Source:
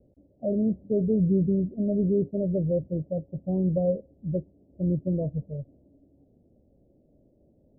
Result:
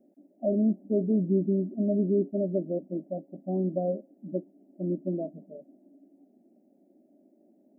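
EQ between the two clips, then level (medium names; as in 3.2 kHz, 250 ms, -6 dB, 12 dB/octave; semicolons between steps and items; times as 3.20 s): brick-wall FIR high-pass 160 Hz; static phaser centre 720 Hz, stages 8; +4.0 dB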